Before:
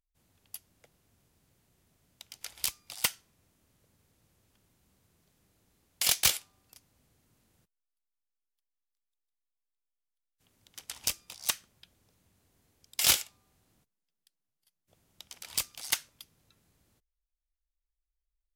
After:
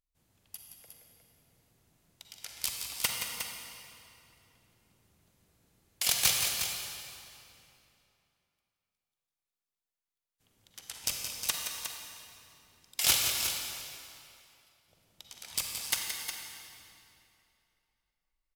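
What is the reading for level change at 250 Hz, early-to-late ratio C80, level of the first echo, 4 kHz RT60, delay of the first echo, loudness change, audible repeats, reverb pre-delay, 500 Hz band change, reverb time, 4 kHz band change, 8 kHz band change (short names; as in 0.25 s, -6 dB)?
+1.0 dB, 0.5 dB, -8.5 dB, 2.2 s, 0.172 s, -1.5 dB, 2, 39 ms, +1.0 dB, 2.8 s, +1.0 dB, +0.5 dB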